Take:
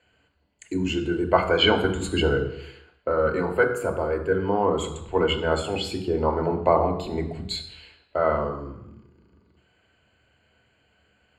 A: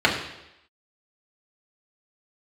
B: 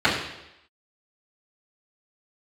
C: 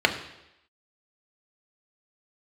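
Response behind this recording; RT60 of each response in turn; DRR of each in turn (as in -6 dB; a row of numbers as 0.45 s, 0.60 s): C; 0.85 s, 0.85 s, 0.85 s; -3.5 dB, -12.0 dB, 3.5 dB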